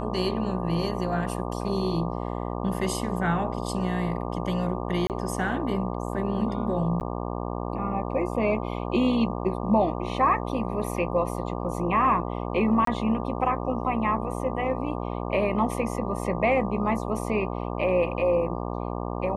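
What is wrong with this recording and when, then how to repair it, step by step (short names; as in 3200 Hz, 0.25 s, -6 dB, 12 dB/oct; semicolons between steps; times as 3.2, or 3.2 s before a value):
buzz 60 Hz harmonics 20 -31 dBFS
5.07–5.1 gap 28 ms
7–7.01 gap 9.5 ms
12.85–12.87 gap 23 ms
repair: de-hum 60 Hz, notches 20; interpolate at 5.07, 28 ms; interpolate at 7, 9.5 ms; interpolate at 12.85, 23 ms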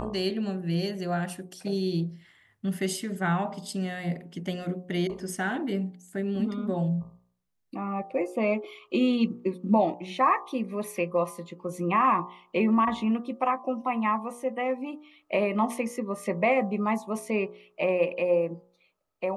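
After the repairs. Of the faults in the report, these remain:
none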